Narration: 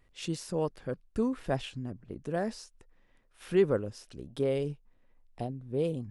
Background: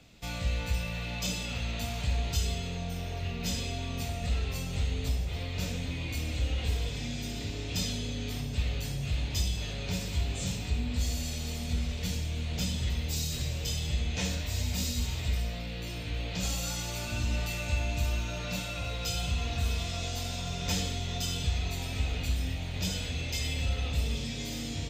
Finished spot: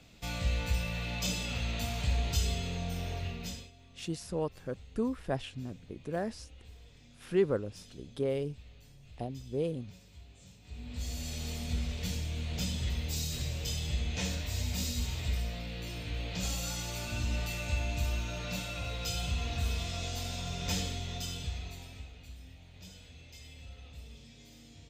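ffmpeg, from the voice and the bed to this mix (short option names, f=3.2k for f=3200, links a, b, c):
-filter_complex "[0:a]adelay=3800,volume=-2.5dB[a];[1:a]volume=19.5dB,afade=t=out:st=3.11:d=0.6:silence=0.0794328,afade=t=in:st=10.62:d=0.81:silence=0.1,afade=t=out:st=20.77:d=1.35:silence=0.158489[b];[a][b]amix=inputs=2:normalize=0"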